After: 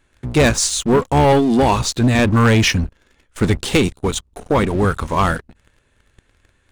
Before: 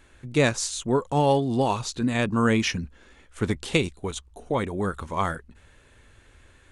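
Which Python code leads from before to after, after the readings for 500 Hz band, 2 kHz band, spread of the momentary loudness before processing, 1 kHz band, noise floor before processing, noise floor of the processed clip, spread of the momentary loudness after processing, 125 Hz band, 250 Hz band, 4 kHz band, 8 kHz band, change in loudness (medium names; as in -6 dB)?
+8.0 dB, +8.5 dB, 12 LU, +8.5 dB, -56 dBFS, -62 dBFS, 9 LU, +10.5 dB, +9.0 dB, +9.5 dB, +10.5 dB, +9.0 dB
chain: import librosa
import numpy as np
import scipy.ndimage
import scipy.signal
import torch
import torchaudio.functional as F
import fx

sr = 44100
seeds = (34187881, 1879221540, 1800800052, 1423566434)

y = fx.octave_divider(x, sr, octaves=1, level_db=-5.0)
y = fx.leveller(y, sr, passes=3)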